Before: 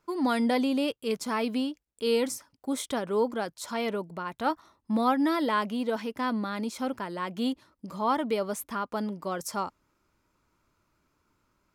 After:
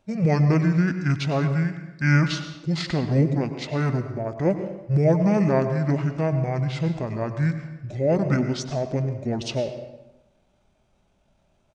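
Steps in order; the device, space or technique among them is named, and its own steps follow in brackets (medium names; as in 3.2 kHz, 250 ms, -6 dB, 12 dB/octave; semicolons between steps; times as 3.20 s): monster voice (pitch shift -8 st; formant shift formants -3.5 st; bass shelf 130 Hz +3.5 dB; reverberation RT60 0.95 s, pre-delay 90 ms, DRR 8.5 dB); trim +5.5 dB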